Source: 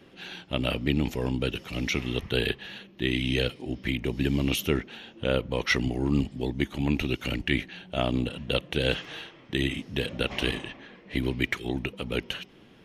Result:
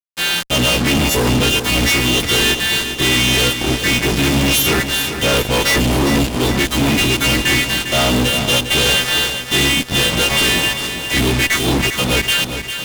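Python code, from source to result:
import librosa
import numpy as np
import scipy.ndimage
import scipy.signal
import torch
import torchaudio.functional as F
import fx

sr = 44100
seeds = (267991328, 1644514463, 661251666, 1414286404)

y = fx.freq_snap(x, sr, grid_st=2)
y = fx.fuzz(y, sr, gain_db=46.0, gate_db=-39.0)
y = fx.echo_feedback(y, sr, ms=402, feedback_pct=54, wet_db=-9)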